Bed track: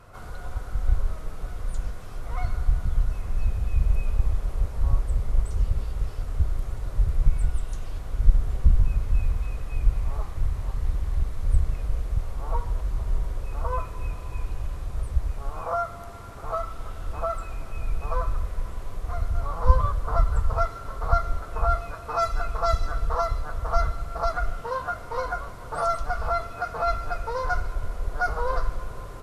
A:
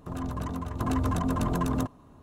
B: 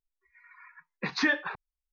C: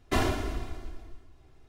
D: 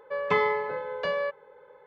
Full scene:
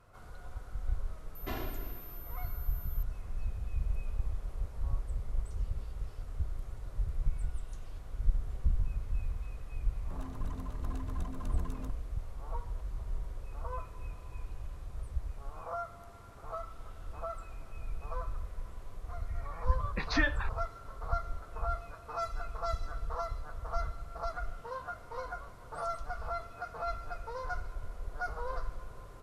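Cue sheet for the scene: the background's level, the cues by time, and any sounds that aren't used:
bed track −11.5 dB
0:01.35: mix in C −12.5 dB + switching amplifier with a slow clock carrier 13,000 Hz
0:10.04: mix in A −10 dB + downward compressor, threshold −30 dBFS
0:18.94: mix in B −4.5 dB
not used: D

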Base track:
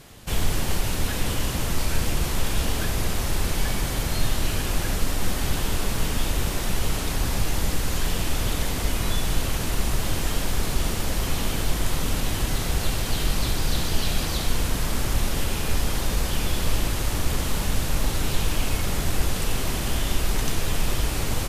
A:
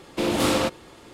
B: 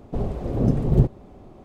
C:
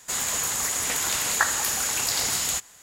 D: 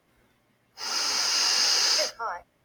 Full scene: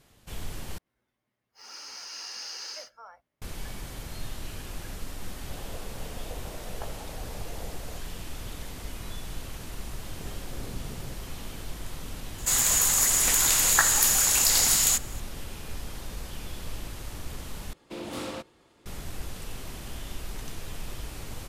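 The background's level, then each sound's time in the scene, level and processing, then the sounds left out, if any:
base track −13.5 dB
0:00.78: overwrite with D −16 dB
0:05.41: mix in C −3 dB + flat-topped band-pass 520 Hz, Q 1.7
0:10.07: mix in B −15.5 dB + downward compressor, threshold −21 dBFS
0:12.38: mix in C −1 dB + high-shelf EQ 6,000 Hz +8.5 dB
0:17.73: overwrite with A −14 dB

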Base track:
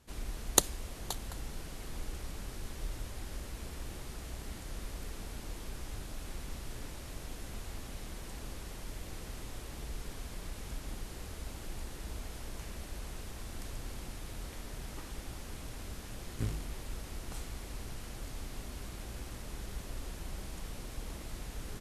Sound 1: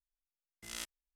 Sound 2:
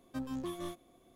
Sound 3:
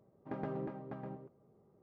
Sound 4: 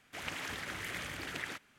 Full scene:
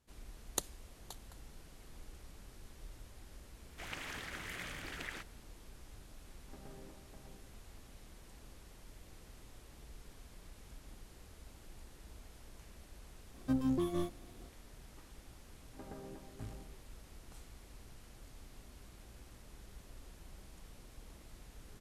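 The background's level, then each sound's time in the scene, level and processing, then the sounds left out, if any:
base track −12 dB
0:03.65: mix in 4 −4.5 dB
0:06.22: mix in 3 −15.5 dB
0:13.34: mix in 2 −1.5 dB + low-shelf EQ 460 Hz +10.5 dB
0:15.48: mix in 3 −10 dB + high-pass filter 140 Hz
not used: 1

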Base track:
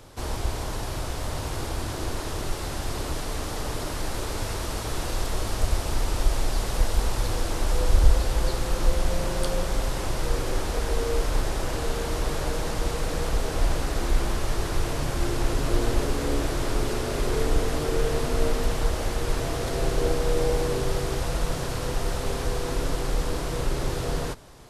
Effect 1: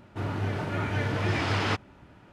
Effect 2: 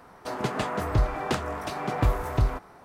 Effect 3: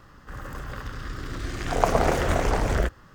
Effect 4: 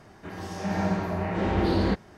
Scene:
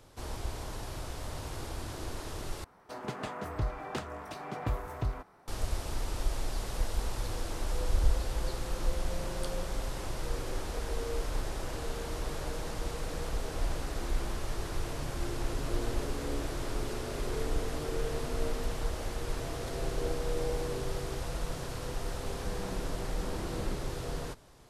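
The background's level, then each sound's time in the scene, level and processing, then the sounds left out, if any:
base track −9 dB
0:02.64: overwrite with 2 −9.5 dB
0:21.81: mix in 4 −17 dB
not used: 1, 3

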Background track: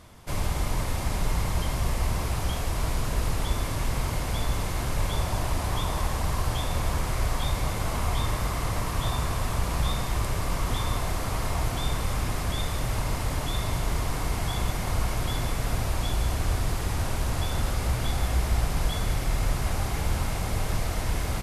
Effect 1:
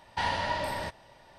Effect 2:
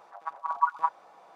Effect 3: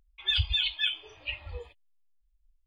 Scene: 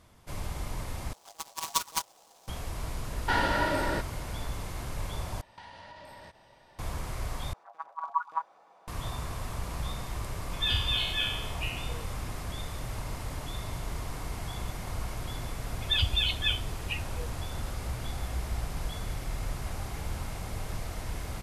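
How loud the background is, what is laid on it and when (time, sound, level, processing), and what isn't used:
background track −8.5 dB
0:01.13: overwrite with 2 −5 dB + short delay modulated by noise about 5,500 Hz, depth 0.15 ms
0:03.11: mix in 1 −0.5 dB + hollow resonant body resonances 330/1,400 Hz, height 14 dB, ringing for 20 ms
0:05.41: overwrite with 1 −3 dB + downward compressor 16 to 1, threshold −41 dBFS
0:07.53: overwrite with 2 −5 dB
0:10.34: mix in 3 −5.5 dB + peak hold with a decay on every bin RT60 0.92 s
0:15.63: mix in 3 −0.5 dB

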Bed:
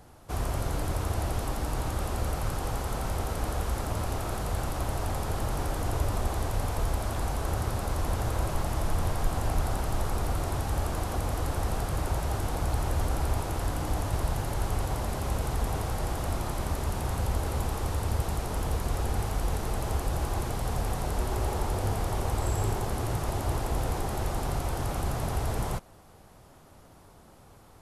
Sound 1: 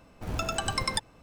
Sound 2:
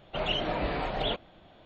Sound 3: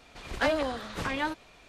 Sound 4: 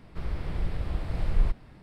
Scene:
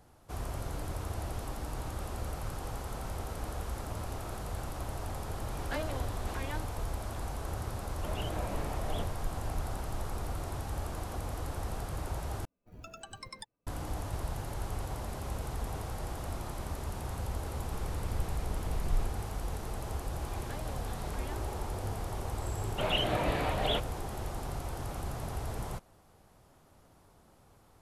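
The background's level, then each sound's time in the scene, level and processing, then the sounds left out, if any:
bed −7.5 dB
0:05.30: mix in 3 −11 dB
0:07.89: mix in 2 −7.5 dB + parametric band 3,700 Hz −7.5 dB 2.8 octaves
0:12.45: overwrite with 1 −15.5 dB + spectral dynamics exaggerated over time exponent 1.5
0:17.56: mix in 4 −7.5 dB
0:20.09: mix in 3 −10.5 dB + downward compressor, threshold −34 dBFS
0:22.64: mix in 2 −0.5 dB

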